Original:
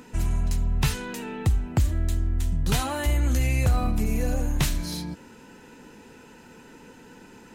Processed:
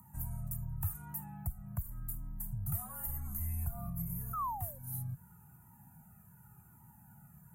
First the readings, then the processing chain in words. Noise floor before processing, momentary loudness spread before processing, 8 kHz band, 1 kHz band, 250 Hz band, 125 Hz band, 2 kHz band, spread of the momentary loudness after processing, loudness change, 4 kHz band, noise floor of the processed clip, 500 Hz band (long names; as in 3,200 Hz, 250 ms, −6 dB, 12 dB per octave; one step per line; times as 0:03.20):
−49 dBFS, 9 LU, −12.0 dB, −7.5 dB, −17.0 dB, −13.5 dB, −27.0 dB, 21 LU, −13.5 dB, below −35 dB, −60 dBFS, −24.5 dB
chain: parametric band 3,000 Hz −13 dB 2.2 octaves
sound drawn into the spectrogram fall, 0:04.33–0:04.79, 550–1,400 Hz −21 dBFS
high-pass filter 120 Hz 24 dB per octave
downward compressor 4 to 1, threshold −31 dBFS, peak gain reduction 12 dB
drawn EQ curve 200 Hz 0 dB, 360 Hz −21 dB, 530 Hz −29 dB, 760 Hz −8 dB, 1,200 Hz −4 dB, 4,700 Hz −25 dB, 13,000 Hz +14 dB
frequency shifter −48 Hz
flanger whose copies keep moving one way falling 0.88 Hz
level +1 dB